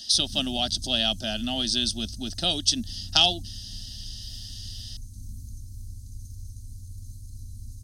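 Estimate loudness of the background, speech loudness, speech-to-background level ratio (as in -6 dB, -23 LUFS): -42.5 LUFS, -24.5 LUFS, 18.0 dB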